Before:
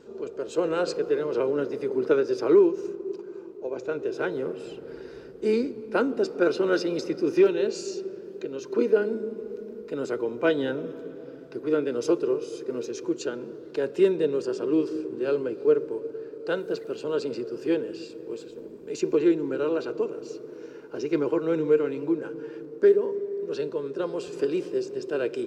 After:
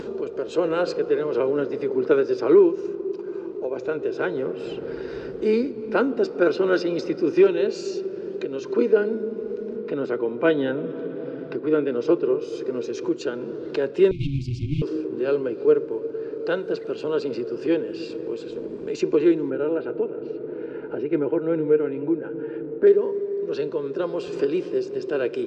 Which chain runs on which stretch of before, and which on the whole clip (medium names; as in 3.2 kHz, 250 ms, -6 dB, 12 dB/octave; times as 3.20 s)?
9.76–12.41 s: low-pass 3.9 kHz + resonant low shelf 110 Hz -7.5 dB, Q 1.5
14.11–14.82 s: comb filter that takes the minimum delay 7.8 ms + brick-wall FIR band-stop 350–2100 Hz + peaking EQ 120 Hz +14.5 dB 0.69 oct
19.50–22.87 s: Butterworth band-stop 1.1 kHz, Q 5.6 + distance through air 440 m
whole clip: low-pass 4.6 kHz 12 dB/octave; upward compressor, threshold -26 dBFS; trim +3 dB